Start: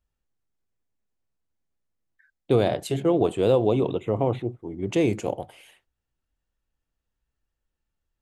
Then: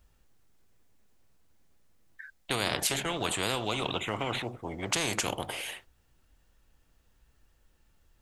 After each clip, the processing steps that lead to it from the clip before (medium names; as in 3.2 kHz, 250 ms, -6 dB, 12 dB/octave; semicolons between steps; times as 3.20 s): spectrum-flattening compressor 4:1; trim -3 dB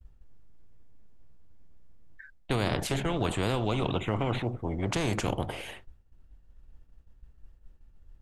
tilt EQ -3 dB/octave; expander -45 dBFS